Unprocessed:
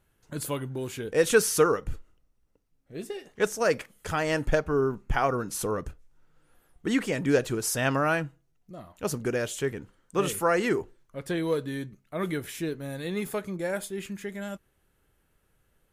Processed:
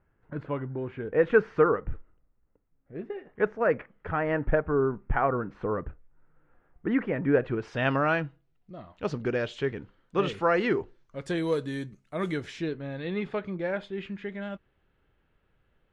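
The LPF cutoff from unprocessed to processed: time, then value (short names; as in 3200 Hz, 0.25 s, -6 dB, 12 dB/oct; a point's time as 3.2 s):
LPF 24 dB/oct
7.34 s 2000 Hz
7.98 s 4100 Hz
10.75 s 4100 Hz
11.4 s 9000 Hz
12.2 s 9000 Hz
12.82 s 3500 Hz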